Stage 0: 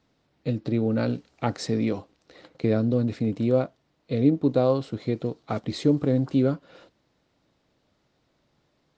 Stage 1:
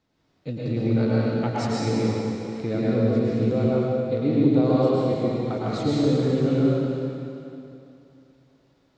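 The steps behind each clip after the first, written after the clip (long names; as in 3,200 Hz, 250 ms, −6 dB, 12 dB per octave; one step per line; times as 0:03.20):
dense smooth reverb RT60 2.8 s, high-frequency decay 0.9×, pre-delay 95 ms, DRR −7.5 dB
level −5 dB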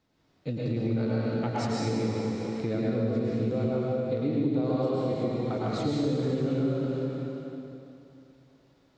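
downward compressor 2.5 to 1, threshold −27 dBFS, peak gain reduction 9 dB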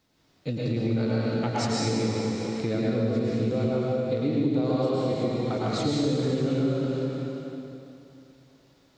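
high-shelf EQ 3,100 Hz +8 dB
level +2 dB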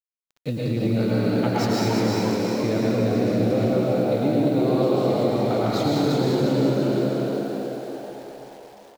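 running median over 5 samples
bit reduction 9 bits
echo with shifted repeats 348 ms, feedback 51%, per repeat +74 Hz, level −4 dB
level +3 dB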